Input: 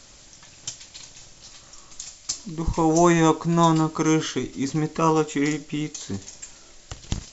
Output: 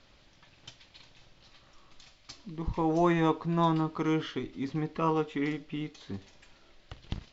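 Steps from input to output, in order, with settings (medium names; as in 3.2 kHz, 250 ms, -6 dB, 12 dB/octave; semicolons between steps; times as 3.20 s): low-pass 4 kHz 24 dB/octave; trim -8 dB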